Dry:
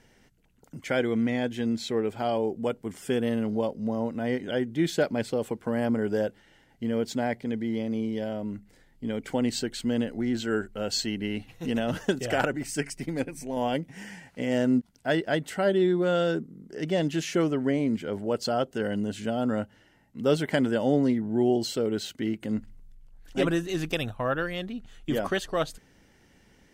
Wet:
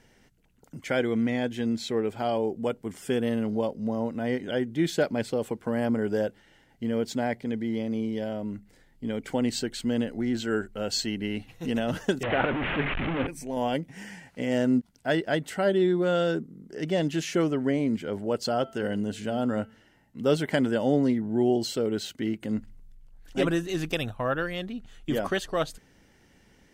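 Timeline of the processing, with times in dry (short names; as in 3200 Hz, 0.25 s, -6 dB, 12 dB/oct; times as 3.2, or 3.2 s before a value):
12.23–13.27 delta modulation 16 kbps, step -22.5 dBFS
18.58–20.24 de-hum 222.8 Hz, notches 22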